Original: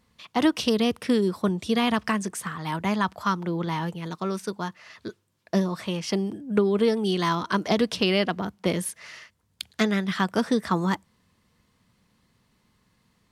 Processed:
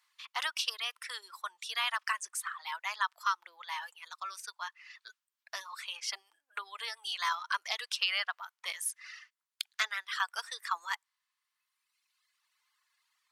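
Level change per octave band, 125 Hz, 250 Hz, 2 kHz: below −40 dB, below −40 dB, −3.0 dB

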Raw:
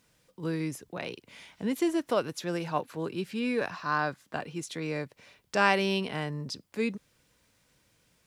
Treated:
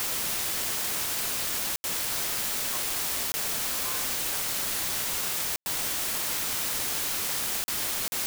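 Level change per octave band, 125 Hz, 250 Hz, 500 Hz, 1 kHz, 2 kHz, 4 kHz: −8.5, −13.0, −10.0, −4.5, −0.5, +9.5 decibels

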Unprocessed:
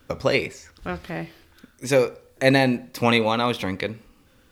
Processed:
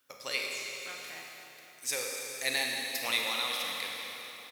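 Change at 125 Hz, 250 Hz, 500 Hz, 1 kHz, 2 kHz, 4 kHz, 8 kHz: −31.5, −25.5, −19.5, −14.0, −7.0, −2.0, +3.5 decibels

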